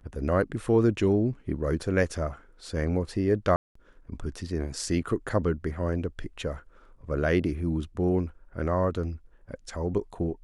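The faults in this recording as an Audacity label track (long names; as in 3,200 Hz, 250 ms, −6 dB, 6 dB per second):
3.560000	3.750000	drop-out 194 ms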